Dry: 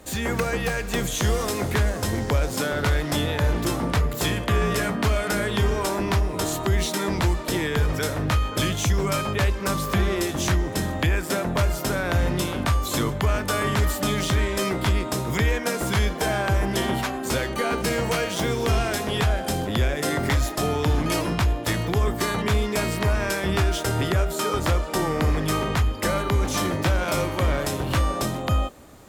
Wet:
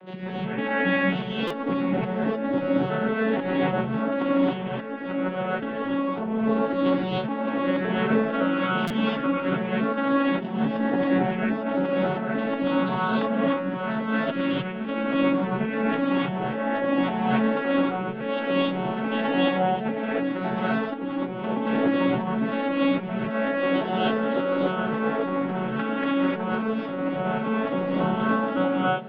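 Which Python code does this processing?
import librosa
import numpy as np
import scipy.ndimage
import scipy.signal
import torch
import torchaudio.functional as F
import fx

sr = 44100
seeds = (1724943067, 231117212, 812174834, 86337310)

y = fx.vocoder_arp(x, sr, chord='minor triad', root=54, every_ms=280)
y = scipy.signal.sosfilt(scipy.signal.ellip(4, 1.0, 80, 3300.0, 'lowpass', fs=sr, output='sos'), y)
y = fx.over_compress(y, sr, threshold_db=-32.0, ratio=-0.5)
y = fx.rev_gated(y, sr, seeds[0], gate_ms=330, shape='rising', drr_db=-7.5)
y = fx.buffer_glitch(y, sr, at_s=(1.47, 8.87), block=256, repeats=5)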